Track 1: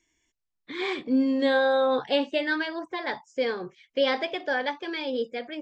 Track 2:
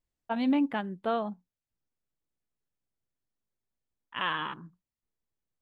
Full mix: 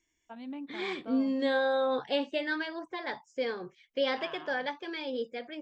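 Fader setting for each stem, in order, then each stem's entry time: −5.5, −15.0 decibels; 0.00, 0.00 seconds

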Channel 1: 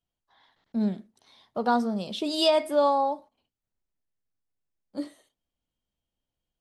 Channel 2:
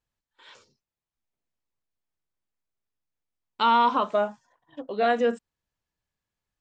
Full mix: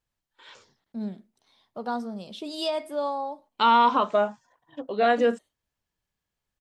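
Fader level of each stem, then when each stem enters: −6.5, +1.5 decibels; 0.20, 0.00 seconds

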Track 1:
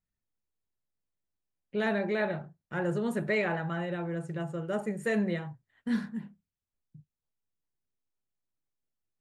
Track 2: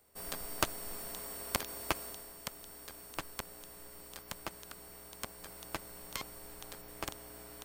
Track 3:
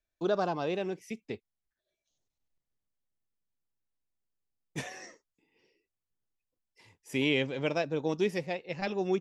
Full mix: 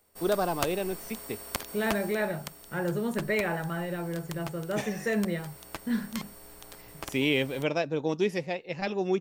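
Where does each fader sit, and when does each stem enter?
+0.5, +0.5, +2.0 decibels; 0.00, 0.00, 0.00 seconds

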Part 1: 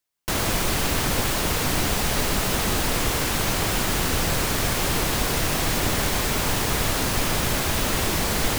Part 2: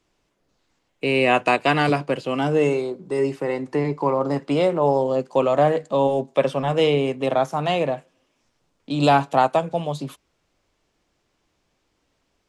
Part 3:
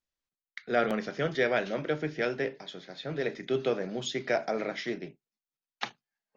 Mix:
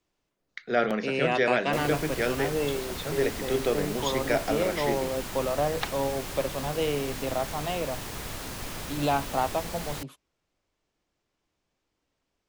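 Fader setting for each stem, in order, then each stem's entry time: −13.5, −9.5, +2.0 decibels; 1.45, 0.00, 0.00 seconds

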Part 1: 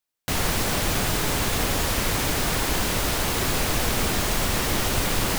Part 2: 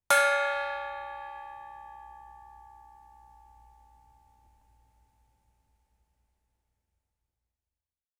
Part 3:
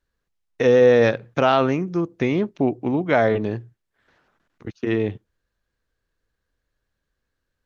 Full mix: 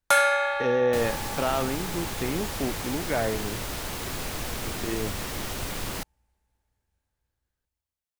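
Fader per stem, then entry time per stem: −9.0, +2.5, −9.5 decibels; 0.65, 0.00, 0.00 seconds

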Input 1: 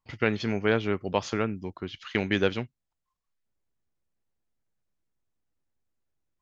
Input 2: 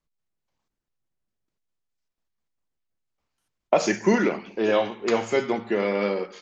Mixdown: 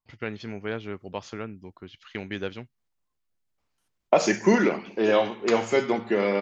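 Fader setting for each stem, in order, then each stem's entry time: −7.5, +0.5 decibels; 0.00, 0.40 seconds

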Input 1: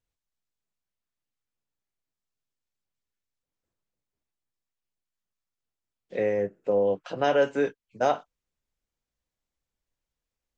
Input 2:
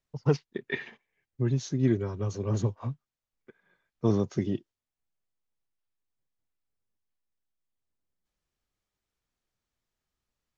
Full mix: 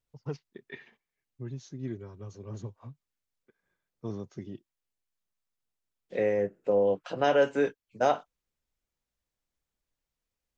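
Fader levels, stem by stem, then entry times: −1.0, −12.0 decibels; 0.00, 0.00 seconds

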